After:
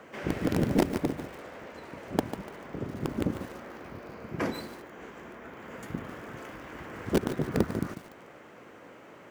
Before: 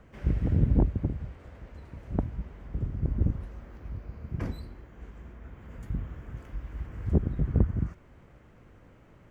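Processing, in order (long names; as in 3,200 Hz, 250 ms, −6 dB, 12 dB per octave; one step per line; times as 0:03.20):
high-pass filter 330 Hz 12 dB per octave
in parallel at −4.5 dB: wrap-around overflow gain 26.5 dB
on the sum: feedback echo at a low word length 146 ms, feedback 35%, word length 8 bits, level −10.5 dB
level +7 dB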